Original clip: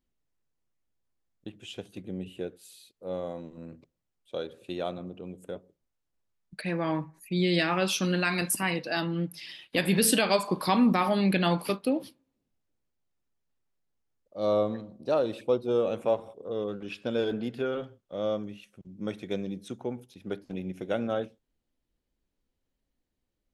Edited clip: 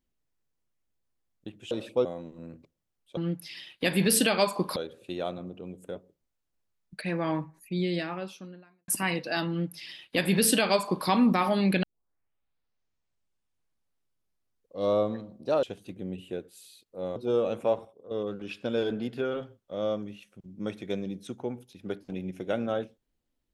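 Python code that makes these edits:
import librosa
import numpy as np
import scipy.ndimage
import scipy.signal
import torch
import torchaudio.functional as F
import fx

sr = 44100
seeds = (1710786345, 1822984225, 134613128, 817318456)

y = fx.studio_fade_out(x, sr, start_s=6.88, length_s=1.6)
y = fx.edit(y, sr, fx.swap(start_s=1.71, length_s=1.53, other_s=15.23, other_length_s=0.34),
    fx.duplicate(start_s=9.09, length_s=1.59, to_s=4.36),
    fx.tape_start(start_s=11.43, length_s=3.15),
    fx.clip_gain(start_s=16.26, length_s=0.26, db=-9.5), tone=tone)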